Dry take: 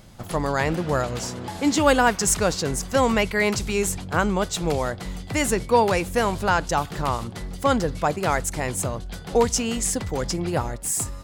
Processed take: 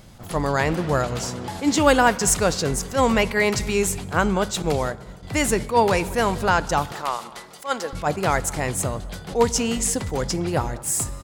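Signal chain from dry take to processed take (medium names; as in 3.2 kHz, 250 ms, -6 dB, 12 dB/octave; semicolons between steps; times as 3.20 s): 6.92–7.93 s: Bessel high-pass 640 Hz, order 2; speakerphone echo 200 ms, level -20 dB; 4.62–5.23 s: expander -22 dBFS; on a send at -17 dB: reverberation RT60 2.1 s, pre-delay 3 ms; on the sum: attacks held to a fixed rise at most 230 dB/s; trim +1.5 dB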